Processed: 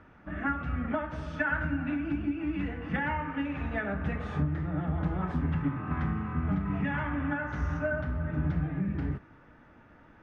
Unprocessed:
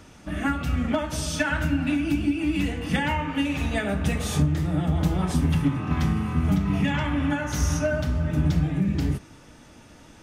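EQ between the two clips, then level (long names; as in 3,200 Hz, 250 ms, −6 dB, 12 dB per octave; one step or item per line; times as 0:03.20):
low-pass with resonance 1,600 Hz, resonance Q 1.9
−7.5 dB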